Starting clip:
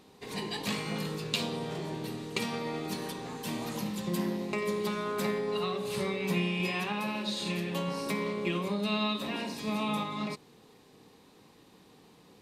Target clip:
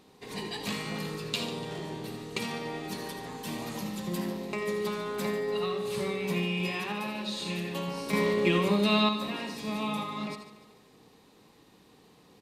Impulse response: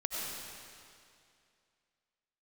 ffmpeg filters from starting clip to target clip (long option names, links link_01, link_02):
-filter_complex "[1:a]atrim=start_sample=2205,atrim=end_sample=3969[link_01];[0:a][link_01]afir=irnorm=-1:irlink=0,asettb=1/sr,asplit=3[link_02][link_03][link_04];[link_02]atrim=end=8.134[link_05];[link_03]atrim=start=8.13:end=9.09,asetpts=PTS-STARTPTS,afade=type=in:duration=0.004:curve=qsin,afade=type=out:start_time=0.956:duration=0.004:curve=qsin,acontrast=85[link_06];[link_04]atrim=start=9.086[link_07];[link_05][link_06]acrossfade=duration=0.004:curve1=hsin:curve2=qsin[link_08];[link_08][link_07]acrossfade=duration=0.004:curve1=qsin:curve2=hsin,aecho=1:1:146|292|438|584|730:0.2|0.0958|0.046|0.0221|0.0106"